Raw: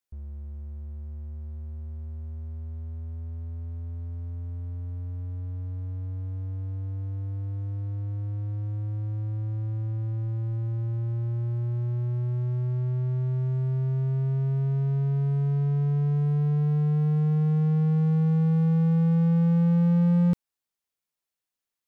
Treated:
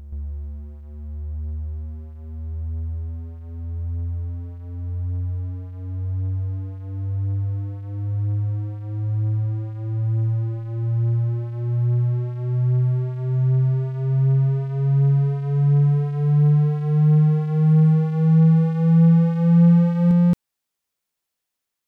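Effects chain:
backwards echo 223 ms −5.5 dB
level +5 dB

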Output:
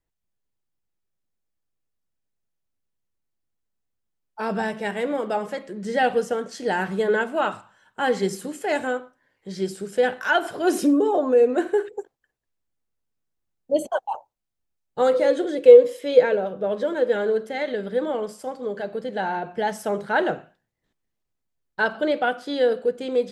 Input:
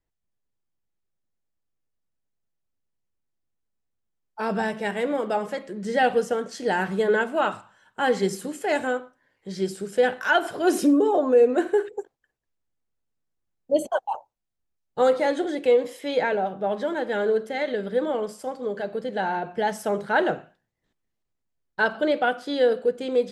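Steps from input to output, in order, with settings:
0:15.14–0:17.16: thirty-one-band graphic EQ 500 Hz +11 dB, 800 Hz −9 dB, 2,000 Hz −3 dB

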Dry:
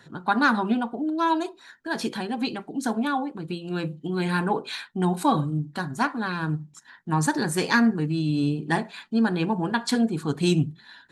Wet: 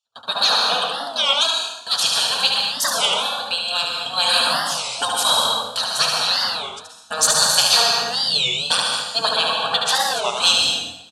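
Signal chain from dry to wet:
mains-hum notches 50/100/150 Hz
gate on every frequency bin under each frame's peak −15 dB weak
meter weighting curve D
noise gate −45 dBFS, range −33 dB
0:09.33–0:10.59: bass and treble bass −5 dB, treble −7 dB
automatic gain control gain up to 6.5 dB
phaser with its sweep stopped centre 860 Hz, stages 4
in parallel at −5.5 dB: asymmetric clip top −20 dBFS
on the sum: single-tap delay 73 ms −4.5 dB
dense smooth reverb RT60 0.86 s, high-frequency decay 0.9×, pre-delay 110 ms, DRR 2 dB
wow of a warped record 33 1/3 rpm, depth 250 cents
level +4.5 dB

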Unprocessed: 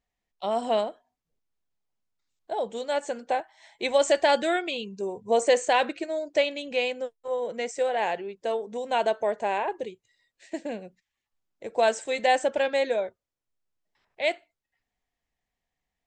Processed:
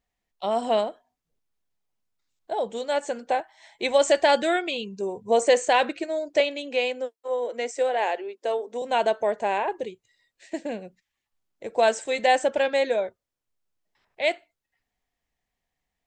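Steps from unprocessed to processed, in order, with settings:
0:06.40–0:08.82: elliptic high-pass filter 250 Hz, stop band 40 dB
level +2 dB

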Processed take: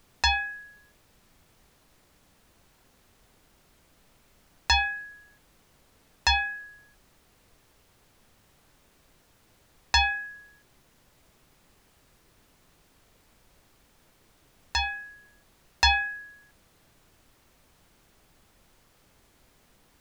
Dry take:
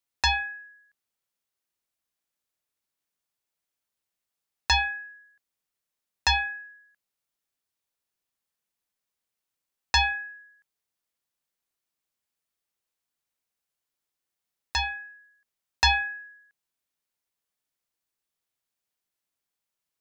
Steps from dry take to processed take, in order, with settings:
background noise pink −62 dBFS

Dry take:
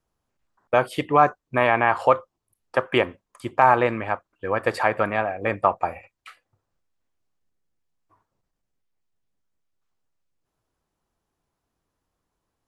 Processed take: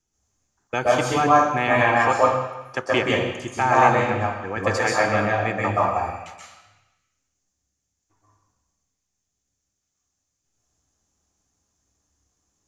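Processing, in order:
parametric band 6,400 Hz +14.5 dB 0.81 octaves
convolution reverb RT60 1.0 s, pre-delay 120 ms, DRR −3 dB
level −8.5 dB

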